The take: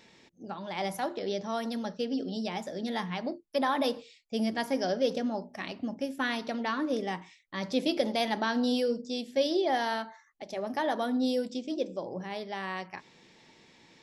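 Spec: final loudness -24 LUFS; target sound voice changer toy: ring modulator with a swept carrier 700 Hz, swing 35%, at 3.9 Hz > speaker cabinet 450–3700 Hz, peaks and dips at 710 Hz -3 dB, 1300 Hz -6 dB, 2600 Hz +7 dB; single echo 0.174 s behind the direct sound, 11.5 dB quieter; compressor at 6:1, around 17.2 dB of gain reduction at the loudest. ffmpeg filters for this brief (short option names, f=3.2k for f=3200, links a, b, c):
-af "acompressor=threshold=-41dB:ratio=6,aecho=1:1:174:0.266,aeval=exprs='val(0)*sin(2*PI*700*n/s+700*0.35/3.9*sin(2*PI*3.9*n/s))':c=same,highpass=450,equalizer=f=710:t=q:w=4:g=-3,equalizer=f=1.3k:t=q:w=4:g=-6,equalizer=f=2.6k:t=q:w=4:g=7,lowpass=f=3.7k:w=0.5412,lowpass=f=3.7k:w=1.3066,volume=25dB"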